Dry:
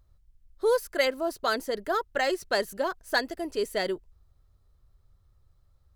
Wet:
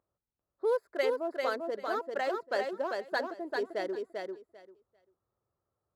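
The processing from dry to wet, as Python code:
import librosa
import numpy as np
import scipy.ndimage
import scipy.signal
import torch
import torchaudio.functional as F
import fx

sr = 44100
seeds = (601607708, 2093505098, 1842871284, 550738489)

p1 = fx.wiener(x, sr, points=15)
p2 = scipy.signal.sosfilt(scipy.signal.butter(2, 310.0, 'highpass', fs=sr, output='sos'), p1)
p3 = fx.high_shelf(p2, sr, hz=2000.0, db=-9.0)
p4 = p3 + fx.echo_feedback(p3, sr, ms=394, feedback_pct=16, wet_db=-4, dry=0)
y = p4 * librosa.db_to_amplitude(-3.5)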